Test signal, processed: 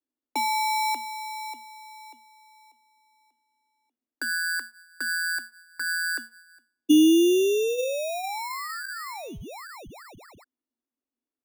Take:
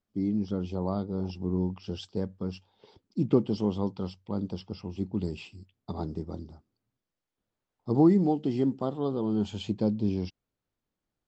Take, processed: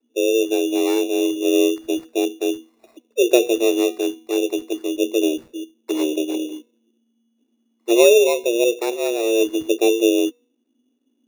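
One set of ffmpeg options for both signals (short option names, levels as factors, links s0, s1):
-filter_complex "[0:a]aemphasis=mode=reproduction:type=riaa,bandreject=f=250.8:t=h:w=4,bandreject=f=501.6:t=h:w=4,bandreject=f=752.4:t=h:w=4,bandreject=f=1003.2:t=h:w=4,bandreject=f=1254:t=h:w=4,bandreject=f=1504.8:t=h:w=4,bandreject=f=1755.6:t=h:w=4,bandreject=f=2006.4:t=h:w=4,bandreject=f=2257.2:t=h:w=4,bandreject=f=2508:t=h:w=4,afreqshift=230,acrossover=split=340|1300[s0][s1][s2];[s0]acontrast=55[s3];[s3][s1][s2]amix=inputs=3:normalize=0,acrusher=samples=14:mix=1:aa=0.000001"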